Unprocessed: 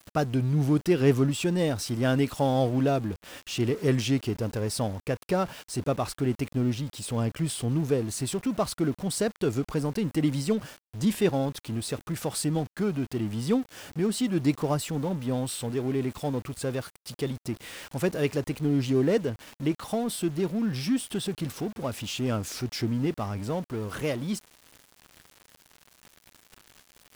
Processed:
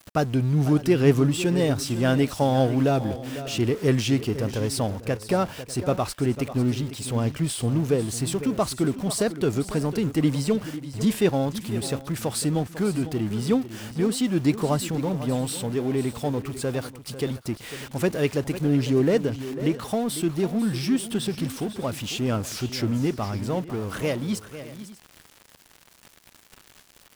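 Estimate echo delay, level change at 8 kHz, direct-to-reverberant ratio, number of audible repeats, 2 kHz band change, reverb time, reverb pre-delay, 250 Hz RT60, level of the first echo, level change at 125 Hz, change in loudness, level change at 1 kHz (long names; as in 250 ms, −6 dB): 499 ms, +3.5 dB, no reverb audible, 2, +3.5 dB, no reverb audible, no reverb audible, no reverb audible, −13.0 dB, +3.5 dB, +3.0 dB, +3.5 dB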